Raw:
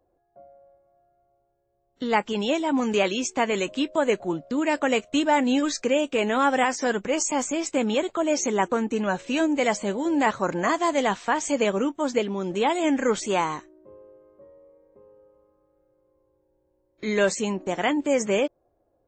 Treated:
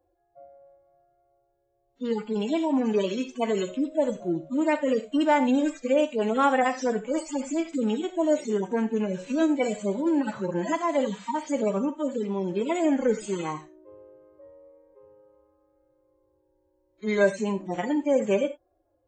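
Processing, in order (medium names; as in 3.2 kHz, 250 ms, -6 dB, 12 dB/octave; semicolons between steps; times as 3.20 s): harmonic-percussive separation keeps harmonic; 10.72–12.29 s: comb of notches 360 Hz; gated-style reverb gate 110 ms flat, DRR 10 dB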